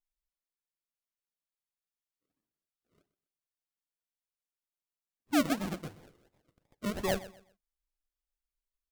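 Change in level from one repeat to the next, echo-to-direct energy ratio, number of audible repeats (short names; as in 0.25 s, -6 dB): -11.5 dB, -16.5 dB, 2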